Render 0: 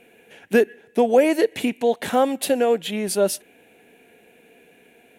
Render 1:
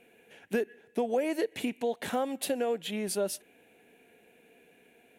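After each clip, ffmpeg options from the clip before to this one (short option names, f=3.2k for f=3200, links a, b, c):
-af "acompressor=threshold=-20dB:ratio=2.5,volume=-7.5dB"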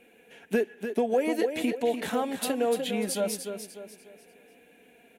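-filter_complex "[0:a]asplit=2[a][b];[b]aecho=0:1:296|592|888|1184:0.398|0.139|0.0488|0.0171[c];[a][c]amix=inputs=2:normalize=0,flanger=delay=3.6:depth=1.4:regen=-43:speed=0.64:shape=triangular,volume=6.5dB"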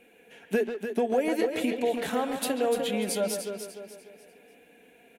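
-filter_complex "[0:a]bandreject=f=117.3:t=h:w=4,bandreject=f=234.6:t=h:w=4,bandreject=f=351.9:t=h:w=4,asplit=2[a][b];[b]adelay=140,highpass=300,lowpass=3.4k,asoftclip=type=hard:threshold=-23dB,volume=-7dB[c];[a][c]amix=inputs=2:normalize=0"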